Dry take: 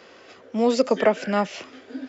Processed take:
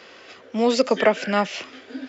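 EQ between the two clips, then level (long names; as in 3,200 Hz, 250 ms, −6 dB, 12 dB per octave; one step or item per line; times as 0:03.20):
parametric band 3,000 Hz +6 dB 2.4 octaves
0.0 dB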